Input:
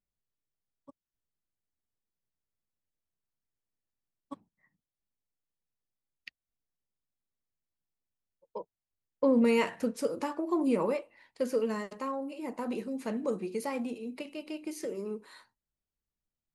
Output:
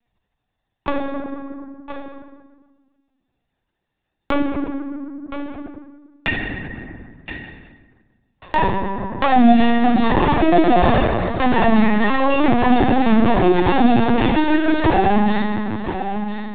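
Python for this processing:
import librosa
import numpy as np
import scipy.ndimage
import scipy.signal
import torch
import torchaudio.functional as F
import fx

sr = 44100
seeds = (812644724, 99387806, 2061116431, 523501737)

p1 = fx.lower_of_two(x, sr, delay_ms=1.1)
p2 = fx.hum_notches(p1, sr, base_hz=50, count=6)
p3 = fx.dereverb_blind(p2, sr, rt60_s=0.58)
p4 = fx.dynamic_eq(p3, sr, hz=1300.0, q=1.3, threshold_db=-50.0, ratio=4.0, max_db=-3)
p5 = fx.fuzz(p4, sr, gain_db=52.0, gate_db=-58.0)
p6 = p4 + F.gain(torch.from_numpy(p5), -5.0).numpy()
p7 = fx.doubler(p6, sr, ms=20.0, db=-6.5)
p8 = fx.small_body(p7, sr, hz=(350.0, 740.0), ring_ms=50, db=8)
p9 = p8 + fx.echo_single(p8, sr, ms=1011, db=-20.5, dry=0)
p10 = fx.rev_fdn(p9, sr, rt60_s=1.4, lf_ratio=1.25, hf_ratio=0.6, size_ms=26.0, drr_db=-4.5)
p11 = fx.lpc_vocoder(p10, sr, seeds[0], excitation='pitch_kept', order=16)
p12 = fx.band_squash(p11, sr, depth_pct=70)
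y = F.gain(torch.from_numpy(p12), -4.0).numpy()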